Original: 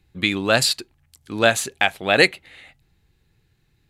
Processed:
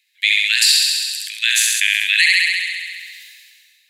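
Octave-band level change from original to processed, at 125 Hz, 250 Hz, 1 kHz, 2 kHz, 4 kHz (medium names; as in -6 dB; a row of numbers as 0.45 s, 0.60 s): under -40 dB, under -40 dB, under -25 dB, +6.0 dB, +9.0 dB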